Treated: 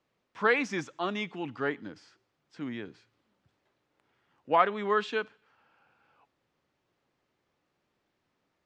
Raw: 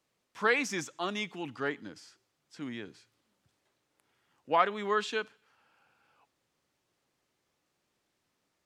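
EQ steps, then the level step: LPF 3000 Hz 6 dB/oct; air absorption 54 m; +3.0 dB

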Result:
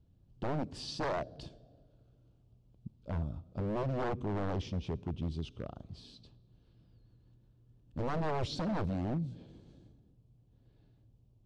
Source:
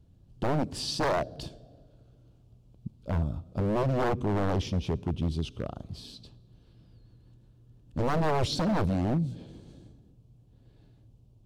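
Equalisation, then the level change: air absorption 96 m; high shelf 8300 Hz +7.5 dB; -7.0 dB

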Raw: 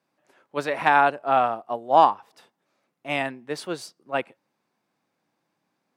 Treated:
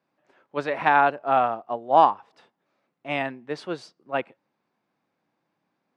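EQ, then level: air absorption 72 m; high shelf 6400 Hz -8 dB; 0.0 dB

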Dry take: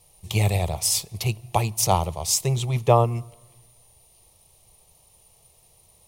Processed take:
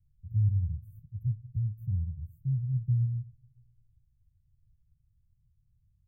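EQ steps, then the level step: inverse Chebyshev band-stop 580–5600 Hz, stop band 70 dB; air absorption 170 m; fixed phaser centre 2000 Hz, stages 4; -3.0 dB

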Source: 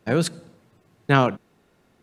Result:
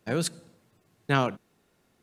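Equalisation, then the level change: high shelf 4100 Hz +8 dB; -7.0 dB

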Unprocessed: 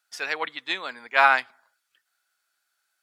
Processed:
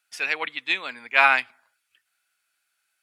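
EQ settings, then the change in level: fifteen-band EQ 100 Hz +10 dB, 250 Hz +4 dB, 2500 Hz +10 dB, 10000 Hz +6 dB; -2.5 dB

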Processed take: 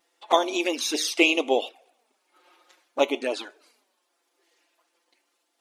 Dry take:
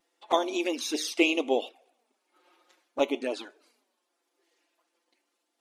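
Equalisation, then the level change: low shelf 250 Hz -11.5 dB; +6.0 dB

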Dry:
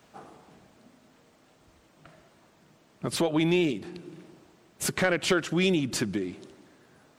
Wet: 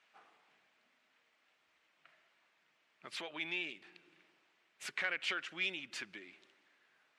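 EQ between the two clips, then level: band-pass 2300 Hz, Q 1.6; -4.5 dB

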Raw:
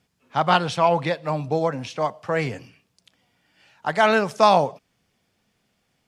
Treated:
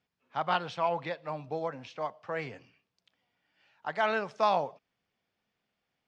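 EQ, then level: air absorption 140 m; low shelf 330 Hz -9 dB; -8.5 dB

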